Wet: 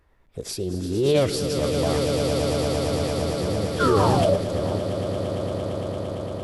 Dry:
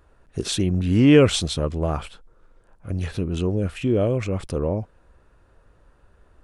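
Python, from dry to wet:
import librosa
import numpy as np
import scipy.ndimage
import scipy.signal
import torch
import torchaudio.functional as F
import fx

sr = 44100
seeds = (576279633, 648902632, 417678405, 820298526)

y = fx.echo_swell(x, sr, ms=114, loudest=8, wet_db=-8)
y = fx.spec_paint(y, sr, seeds[0], shape='fall', start_s=3.8, length_s=0.57, low_hz=390.0, high_hz=1100.0, level_db=-13.0)
y = fx.formant_shift(y, sr, semitones=5)
y = F.gain(torch.from_numpy(y), -6.0).numpy()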